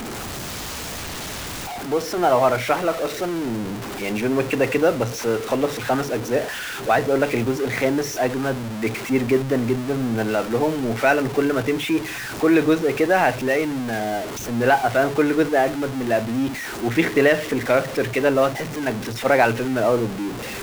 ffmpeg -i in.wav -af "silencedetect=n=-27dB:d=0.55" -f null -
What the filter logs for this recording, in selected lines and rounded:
silence_start: 0.00
silence_end: 1.89 | silence_duration: 1.89